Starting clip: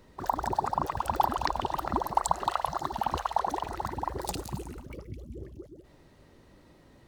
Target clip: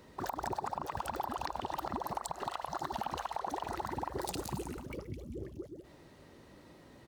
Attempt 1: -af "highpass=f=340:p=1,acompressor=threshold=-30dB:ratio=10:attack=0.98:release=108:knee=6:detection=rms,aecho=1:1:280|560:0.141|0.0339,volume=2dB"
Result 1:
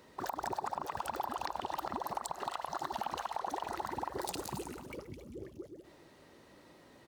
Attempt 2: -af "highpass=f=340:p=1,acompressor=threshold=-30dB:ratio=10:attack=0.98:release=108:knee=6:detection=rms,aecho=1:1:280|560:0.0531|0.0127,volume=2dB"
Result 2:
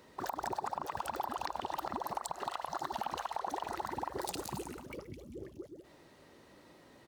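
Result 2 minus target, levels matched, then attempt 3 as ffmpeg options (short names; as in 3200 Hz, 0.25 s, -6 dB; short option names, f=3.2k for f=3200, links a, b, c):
125 Hz band -5.5 dB
-af "highpass=f=110:p=1,acompressor=threshold=-30dB:ratio=10:attack=0.98:release=108:knee=6:detection=rms,aecho=1:1:280|560:0.0531|0.0127,volume=2dB"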